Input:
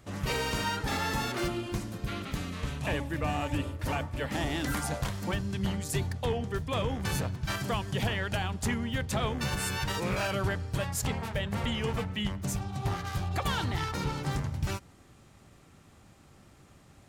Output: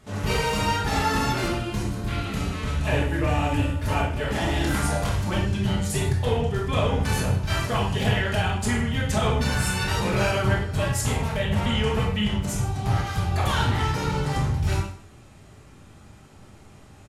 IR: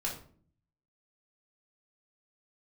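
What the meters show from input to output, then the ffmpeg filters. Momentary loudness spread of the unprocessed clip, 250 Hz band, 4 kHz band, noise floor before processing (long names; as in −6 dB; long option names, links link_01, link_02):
4 LU, +7.0 dB, +6.0 dB, −57 dBFS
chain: -filter_complex "[0:a]aecho=1:1:156:0.126[link_01];[1:a]atrim=start_sample=2205,afade=type=out:start_time=0.14:duration=0.01,atrim=end_sample=6615,asetrate=25578,aresample=44100[link_02];[link_01][link_02]afir=irnorm=-1:irlink=0"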